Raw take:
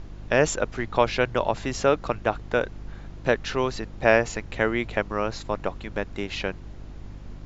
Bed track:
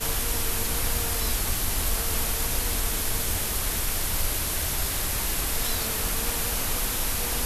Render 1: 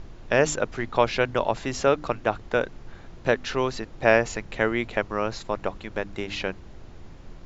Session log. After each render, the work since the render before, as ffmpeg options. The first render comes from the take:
-af "bandreject=f=50:t=h:w=4,bandreject=f=100:t=h:w=4,bandreject=f=150:t=h:w=4,bandreject=f=200:t=h:w=4,bandreject=f=250:t=h:w=4,bandreject=f=300:t=h:w=4"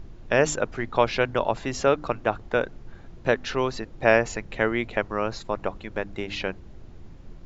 -af "afftdn=nr=6:nf=-45"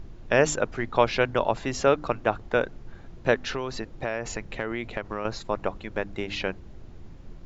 -filter_complex "[0:a]asettb=1/sr,asplit=3[s0][s1][s2];[s0]atrim=end=3.534[s3];[s1]atrim=start=3.53:end=5.25,asetpts=PTS-STARTPTS,afade=t=in:d=0.004:c=qsin,afade=t=out:st=1.716:d=0.004:c=qsin,acompressor=threshold=0.0562:ratio=6:attack=3.2:release=140:knee=1:detection=peak[s4];[s2]atrim=start=5.246[s5];[s3][s4]acrossfade=d=0.004:c1=hsin:c2=qsin[s6];[s6][s5]acrossfade=d=0.004:c1=qsin:c2=hsin"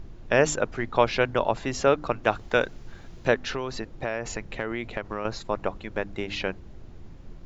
-filter_complex "[0:a]asplit=3[s0][s1][s2];[s0]afade=t=out:st=2.23:d=0.02[s3];[s1]highshelf=f=2500:g=10,afade=t=in:st=2.23:d=0.02,afade=t=out:st=3.27:d=0.02[s4];[s2]afade=t=in:st=3.27:d=0.02[s5];[s3][s4][s5]amix=inputs=3:normalize=0"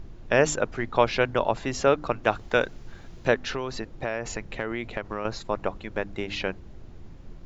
-af anull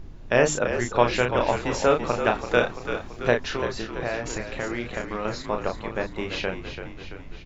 -filter_complex "[0:a]asplit=2[s0][s1];[s1]adelay=33,volume=0.562[s2];[s0][s2]amix=inputs=2:normalize=0,asplit=2[s3][s4];[s4]asplit=7[s5][s6][s7][s8][s9][s10][s11];[s5]adelay=336,afreqshift=-44,volume=0.355[s12];[s6]adelay=672,afreqshift=-88,volume=0.207[s13];[s7]adelay=1008,afreqshift=-132,volume=0.119[s14];[s8]adelay=1344,afreqshift=-176,volume=0.0692[s15];[s9]adelay=1680,afreqshift=-220,volume=0.0403[s16];[s10]adelay=2016,afreqshift=-264,volume=0.0232[s17];[s11]adelay=2352,afreqshift=-308,volume=0.0135[s18];[s12][s13][s14][s15][s16][s17][s18]amix=inputs=7:normalize=0[s19];[s3][s19]amix=inputs=2:normalize=0"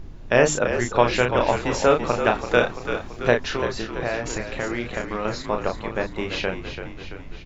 -af "volume=1.33,alimiter=limit=0.794:level=0:latency=1"

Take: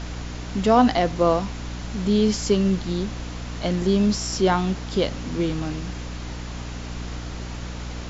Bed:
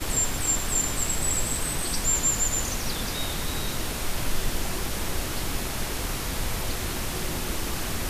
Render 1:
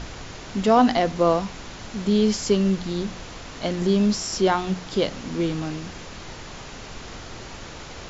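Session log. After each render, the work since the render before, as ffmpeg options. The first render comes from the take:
-af "bandreject=f=60:t=h:w=4,bandreject=f=120:t=h:w=4,bandreject=f=180:t=h:w=4,bandreject=f=240:t=h:w=4,bandreject=f=300:t=h:w=4"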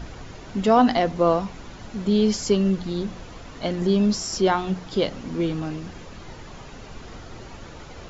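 -af "afftdn=nr=8:nf=-39"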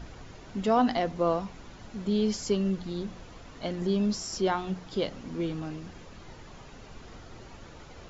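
-af "volume=0.447"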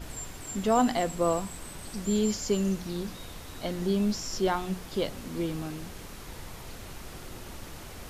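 -filter_complex "[1:a]volume=0.168[s0];[0:a][s0]amix=inputs=2:normalize=0"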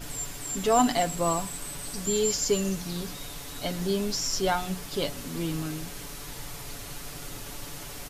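-af "highshelf=f=3500:g=7.5,aecho=1:1:7:0.62"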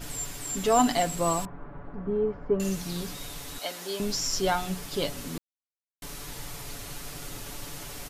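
-filter_complex "[0:a]asettb=1/sr,asplit=3[s0][s1][s2];[s0]atrim=end=1.454[s3];[s1]atrim=start=1.45:end=2.6,asetpts=PTS-STARTPTS,afade=t=in:d=0.004:c=qsin,afade=t=out:st=1.146:d=0.004:c=qsin,lowpass=f=1400:w=0.5412,lowpass=f=1400:w=1.3066[s4];[s2]atrim=start=2.596[s5];[s3][s4]acrossfade=d=0.004:c1=hsin:c2=qsin[s6];[s6][s5]acrossfade=d=0.004:c1=qsin:c2=hsin,asettb=1/sr,asplit=3[s7][s8][s9];[s7]atrim=end=3.584[s10];[s8]atrim=start=3.58:end=4,asetpts=PTS-STARTPTS,afade=t=in:d=0.004:c=qsin,afade=t=out:st=0.416:d=0.004:c=qsin,highpass=530[s11];[s9]atrim=start=3.996[s12];[s10][s11]acrossfade=d=0.004:c1=hsin:c2=qsin[s13];[s13][s12]acrossfade=d=0.004:c1=qsin:c2=hsin,asplit=3[s14][s15][s16];[s14]atrim=end=5.38,asetpts=PTS-STARTPTS,afade=t=out:st=5.376:d=0.004:c=hsin[s17];[s15]atrim=start=5.38:end=6.02,asetpts=PTS-STARTPTS,volume=0[s18];[s16]atrim=start=6.02,asetpts=PTS-STARTPTS,afade=t=in:d=0.004:c=hsin[s19];[s17][s18][s19]concat=n=3:v=0:a=1"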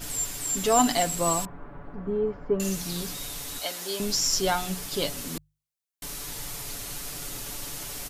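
-af "highshelf=f=3900:g=7,bandreject=f=50:t=h:w=6,bandreject=f=100:t=h:w=6,bandreject=f=150:t=h:w=6"

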